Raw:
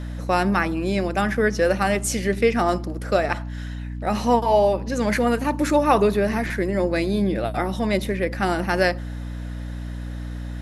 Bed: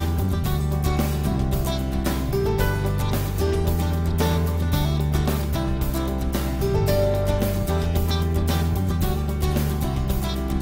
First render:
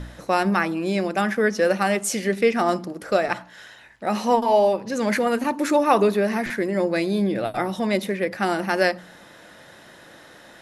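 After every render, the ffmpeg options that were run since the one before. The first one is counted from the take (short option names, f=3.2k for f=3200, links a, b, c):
-af "bandreject=f=60:t=h:w=4,bandreject=f=120:t=h:w=4,bandreject=f=180:t=h:w=4,bandreject=f=240:t=h:w=4,bandreject=f=300:t=h:w=4"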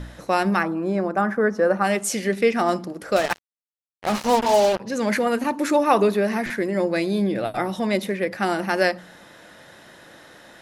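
-filter_complex "[0:a]asplit=3[a][b][c];[a]afade=t=out:st=0.62:d=0.02[d];[b]highshelf=f=1.9k:t=q:w=1.5:g=-12,afade=t=in:st=0.62:d=0.02,afade=t=out:st=1.83:d=0.02[e];[c]afade=t=in:st=1.83:d=0.02[f];[d][e][f]amix=inputs=3:normalize=0,asettb=1/sr,asplit=3[g][h][i];[g]atrim=end=3.164[j];[h]atrim=start=3.16:end=4.8,asetpts=PTS-STARTPTS,afade=t=in:d=0.004:c=qsin,afade=t=out:st=1.636:d=0.004:c=qsin,acrusher=bits=3:mix=0:aa=0.5[k];[i]atrim=start=4.796[l];[j][k]acrossfade=d=0.004:c1=hsin:c2=qsin[m];[m][l]acrossfade=d=0.004:c1=qsin:c2=hsin"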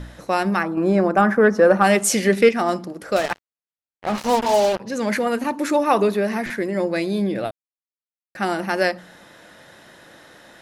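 -filter_complex "[0:a]asettb=1/sr,asplit=3[a][b][c];[a]atrim=end=0.774[d];[b]atrim=start=0.77:end=2.49,asetpts=PTS-STARTPTS,afade=t=in:d=0.004:c=qsin,afade=t=out:st=1.716:d=0.004:c=qsin,acontrast=51[e];[c]atrim=start=2.486[f];[d][e]acrossfade=d=0.004:c1=hsin:c2=qsin[g];[g][f]acrossfade=d=0.004:c1=qsin:c2=hsin,asettb=1/sr,asplit=3[h][i][j];[h]atrim=end=3.304[k];[i]atrim=start=3.3:end=4.18,asetpts=PTS-STARTPTS,afade=t=in:d=0.004:c=qsin,afade=t=out:st=0.876:d=0.004:c=qsin,highshelf=f=4.4k:g=-11[l];[j]atrim=start=4.176[m];[k][l]acrossfade=d=0.004:c1=hsin:c2=qsin[n];[n][m]acrossfade=d=0.004:c1=qsin:c2=hsin,asplit=3[o][p][q];[o]atrim=end=7.51,asetpts=PTS-STARTPTS,afade=t=out:st=7.506:d=0.004:c=hsin[r];[p]atrim=start=7.51:end=8.35,asetpts=PTS-STARTPTS,volume=0[s];[q]atrim=start=8.35,asetpts=PTS-STARTPTS,afade=t=in:d=0.004:c=hsin[t];[r][s][t]concat=n=3:v=0:a=1"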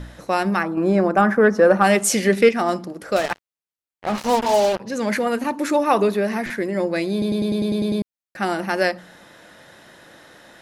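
-filter_complex "[0:a]asplit=10[a][b][c][d][e][f][g][h][i][j];[a]atrim=end=7.222[k];[b]atrim=start=7.118:end=7.222[l];[c]atrim=start=7.118:end=7.222[m];[d]atrim=start=7.118:end=7.222[n];[e]atrim=start=7.118:end=7.222[o];[f]atrim=start=7.118:end=7.222[p];[g]atrim=start=7.118:end=7.222[q];[h]atrim=start=7.118:end=7.222[r];[i]atrim=start=7.118:end=7.222[s];[j]atrim=start=8.018[t];[k][l]acrossfade=d=0.004:c1=hsin:c2=hsin[u];[u][m]acrossfade=d=0.004:c1=hsin:c2=hsin[v];[v][n]acrossfade=d=0.004:c1=hsin:c2=hsin[w];[w][o]acrossfade=d=0.004:c1=hsin:c2=hsin[x];[x][p]acrossfade=d=0.004:c1=hsin:c2=hsin[y];[y][q]acrossfade=d=0.004:c1=hsin:c2=hsin[z];[z][r]acrossfade=d=0.004:c1=hsin:c2=hsin[aa];[aa][s]acrossfade=d=0.004:c1=hsin:c2=hsin[ab];[ab][t]acrossfade=d=0.004:c1=hsin:c2=hsin"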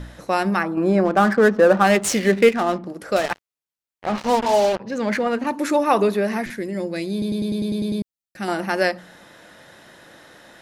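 -filter_complex "[0:a]asettb=1/sr,asplit=3[a][b][c];[a]atrim=end=1.054[d];[b]atrim=start=1.05:end=2.86,asetpts=PTS-STARTPTS,afade=t=in:d=0.004:c=qsin,afade=t=out:st=1.806:d=0.004:c=qsin,adynamicsmooth=sensitivity=5:basefreq=1k[e];[c]atrim=start=2.856[f];[d][e]acrossfade=d=0.004:c1=hsin:c2=qsin[g];[g][f]acrossfade=d=0.004:c1=qsin:c2=hsin,asettb=1/sr,asplit=3[h][i][j];[h]atrim=end=4.064[k];[i]atrim=start=4.06:end=5.47,asetpts=PTS-STARTPTS,afade=t=in:d=0.004:c=qsin,afade=t=out:st=1.406:d=0.004:c=qsin,adynamicsmooth=sensitivity=3:basefreq=3.8k[l];[j]atrim=start=5.466[m];[k][l]acrossfade=d=0.004:c1=hsin:c2=qsin[n];[n][m]acrossfade=d=0.004:c1=qsin:c2=hsin,asettb=1/sr,asplit=3[o][p][q];[o]atrim=end=6.454[r];[p]atrim=start=6.45:end=8.48,asetpts=PTS-STARTPTS,afade=t=in:d=0.004:c=qsin,afade=t=out:st=2.026:d=0.004:c=qsin,equalizer=f=1k:t=o:w=2.5:g=-9[s];[q]atrim=start=8.476[t];[r][s]acrossfade=d=0.004:c1=hsin:c2=qsin[u];[u][t]acrossfade=d=0.004:c1=qsin:c2=hsin"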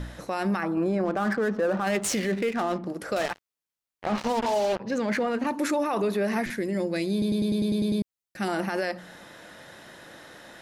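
-af "acompressor=threshold=-25dB:ratio=1.5,alimiter=limit=-18.5dB:level=0:latency=1:release=18"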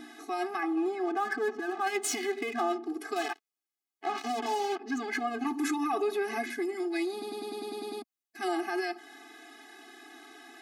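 -filter_complex "[0:a]acrossover=split=530|4700[a][b][c];[a]asoftclip=type=hard:threshold=-27.5dB[d];[d][b][c]amix=inputs=3:normalize=0,afftfilt=real='re*eq(mod(floor(b*sr/1024/220),2),1)':imag='im*eq(mod(floor(b*sr/1024/220),2),1)':win_size=1024:overlap=0.75"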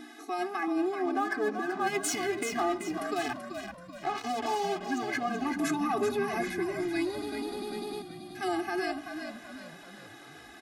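-filter_complex "[0:a]asplit=6[a][b][c][d][e][f];[b]adelay=383,afreqshift=-56,volume=-7.5dB[g];[c]adelay=766,afreqshift=-112,volume=-14.4dB[h];[d]adelay=1149,afreqshift=-168,volume=-21.4dB[i];[e]adelay=1532,afreqshift=-224,volume=-28.3dB[j];[f]adelay=1915,afreqshift=-280,volume=-35.2dB[k];[a][g][h][i][j][k]amix=inputs=6:normalize=0"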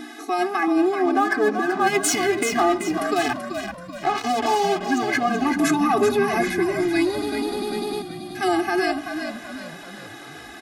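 -af "volume=10dB"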